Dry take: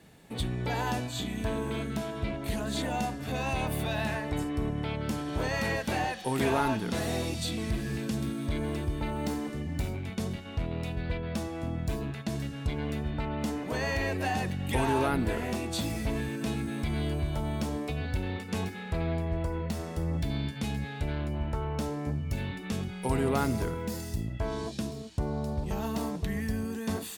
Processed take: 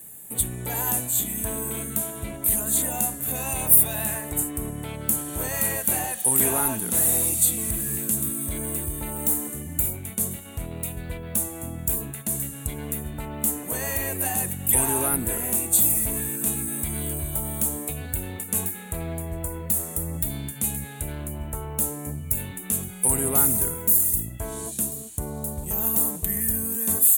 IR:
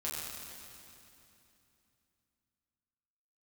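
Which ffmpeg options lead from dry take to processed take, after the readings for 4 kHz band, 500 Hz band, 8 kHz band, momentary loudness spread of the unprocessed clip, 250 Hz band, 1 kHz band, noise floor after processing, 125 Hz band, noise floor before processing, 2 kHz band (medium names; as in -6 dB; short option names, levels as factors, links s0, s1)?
-1.5 dB, -1.0 dB, +22.5 dB, 5 LU, -1.0 dB, -1.0 dB, -38 dBFS, -1.0 dB, -40 dBFS, -1.0 dB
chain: -af "aexciter=amount=14.6:drive=9.3:freq=7800,volume=0.891"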